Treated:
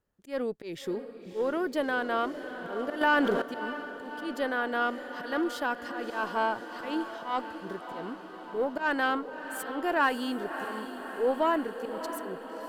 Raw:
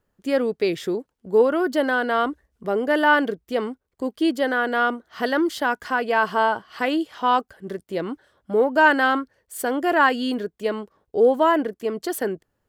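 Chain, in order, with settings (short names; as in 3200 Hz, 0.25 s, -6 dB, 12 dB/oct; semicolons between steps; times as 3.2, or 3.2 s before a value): added harmonics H 4 -25 dB, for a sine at -4 dBFS; auto swell 0.156 s; on a send: diffused feedback echo 0.61 s, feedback 68%, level -10.5 dB; 3.01–3.42 on the sum: fast leveller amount 70%; gain -8 dB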